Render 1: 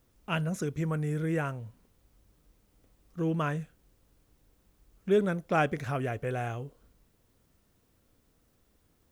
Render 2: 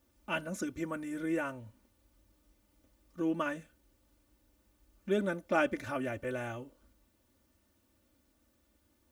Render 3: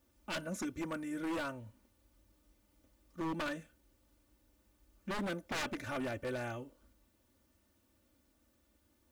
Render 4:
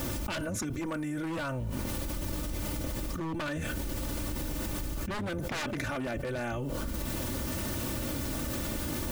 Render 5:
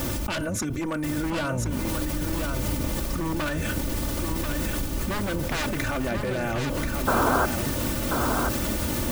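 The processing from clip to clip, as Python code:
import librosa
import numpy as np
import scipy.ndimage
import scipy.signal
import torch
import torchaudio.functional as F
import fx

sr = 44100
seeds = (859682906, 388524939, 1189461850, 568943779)

y1 = scipy.signal.sosfilt(scipy.signal.butter(2, 52.0, 'highpass', fs=sr, output='sos'), x)
y1 = y1 + 0.93 * np.pad(y1, (int(3.4 * sr / 1000.0), 0))[:len(y1)]
y1 = y1 * 10.0 ** (-4.5 / 20.0)
y2 = 10.0 ** (-30.5 / 20.0) * (np.abs((y1 / 10.0 ** (-30.5 / 20.0) + 3.0) % 4.0 - 2.0) - 1.0)
y2 = y2 * 10.0 ** (-1.0 / 20.0)
y3 = fx.octave_divider(y2, sr, octaves=1, level_db=-3.0)
y3 = fx.env_flatten(y3, sr, amount_pct=100)
y4 = fx.spec_paint(y3, sr, seeds[0], shape='noise', start_s=7.07, length_s=0.39, low_hz=220.0, high_hz=1600.0, level_db=-28.0)
y4 = fx.echo_feedback(y4, sr, ms=1035, feedback_pct=30, wet_db=-5)
y4 = y4 * 10.0 ** (5.5 / 20.0)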